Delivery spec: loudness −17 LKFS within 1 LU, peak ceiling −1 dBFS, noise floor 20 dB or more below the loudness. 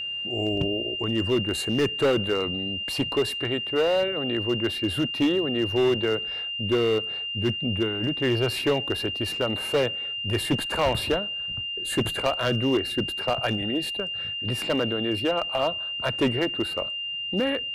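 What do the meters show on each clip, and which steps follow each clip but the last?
share of clipped samples 1.4%; peaks flattened at −17.0 dBFS; interfering tone 2,800 Hz; level of the tone −29 dBFS; integrated loudness −25.5 LKFS; sample peak −17.0 dBFS; target loudness −17.0 LKFS
→ clipped peaks rebuilt −17 dBFS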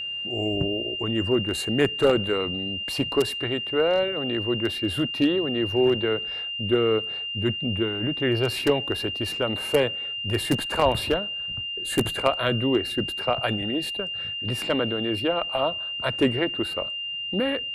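share of clipped samples 0.0%; interfering tone 2,800 Hz; level of the tone −29 dBFS
→ notch filter 2,800 Hz, Q 30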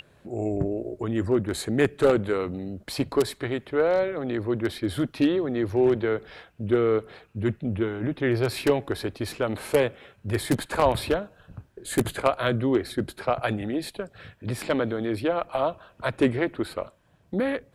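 interfering tone none found; integrated loudness −26.5 LKFS; sample peak −7.0 dBFS; target loudness −17.0 LKFS
→ level +9.5 dB
brickwall limiter −1 dBFS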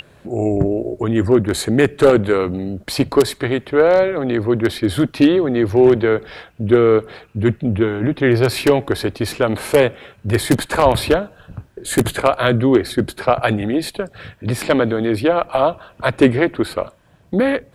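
integrated loudness −17.0 LKFS; sample peak −1.0 dBFS; background noise floor −51 dBFS

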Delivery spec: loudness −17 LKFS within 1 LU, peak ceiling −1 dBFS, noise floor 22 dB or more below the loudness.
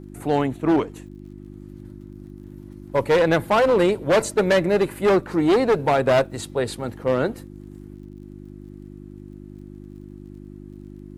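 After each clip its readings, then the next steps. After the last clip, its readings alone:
crackle rate 37 per second; mains hum 50 Hz; hum harmonics up to 350 Hz; level of the hum −36 dBFS; integrated loudness −20.5 LKFS; sample peak −8.0 dBFS; target loudness −17.0 LKFS
→ click removal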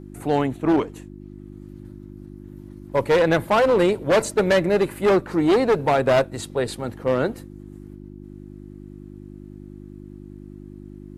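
crackle rate 0 per second; mains hum 50 Hz; hum harmonics up to 350 Hz; level of the hum −36 dBFS
→ hum removal 50 Hz, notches 7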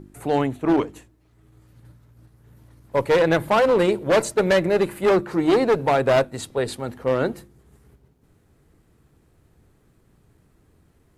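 mains hum none found; integrated loudness −21.0 LKFS; sample peak −7.5 dBFS; target loudness −17.0 LKFS
→ level +4 dB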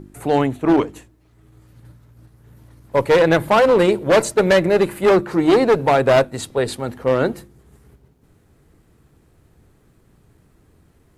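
integrated loudness −17.0 LKFS; sample peak −3.5 dBFS; background noise floor −57 dBFS

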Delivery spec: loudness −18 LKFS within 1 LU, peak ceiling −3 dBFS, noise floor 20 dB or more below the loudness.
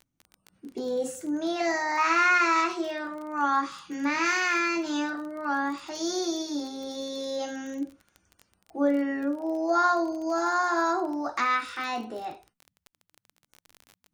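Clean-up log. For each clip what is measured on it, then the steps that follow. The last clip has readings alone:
crackle rate 22 per second; integrated loudness −27.5 LKFS; sample peak −11.0 dBFS; target loudness −18.0 LKFS
→ click removal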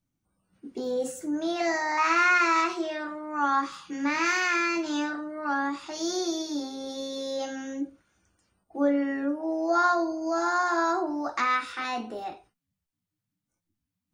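crackle rate 0 per second; integrated loudness −27.0 LKFS; sample peak −11.0 dBFS; target loudness −18.0 LKFS
→ level +9 dB
brickwall limiter −3 dBFS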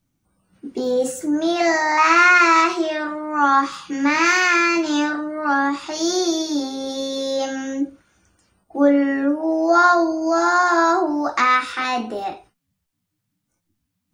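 integrated loudness −18.0 LKFS; sample peak −3.0 dBFS; background noise floor −76 dBFS

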